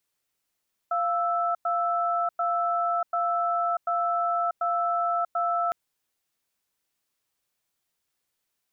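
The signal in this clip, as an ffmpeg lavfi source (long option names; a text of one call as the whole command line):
ffmpeg -f lavfi -i "aevalsrc='0.0531*(sin(2*PI*694*t)+sin(2*PI*1320*t))*clip(min(mod(t,0.74),0.64-mod(t,0.74))/0.005,0,1)':duration=4.81:sample_rate=44100" out.wav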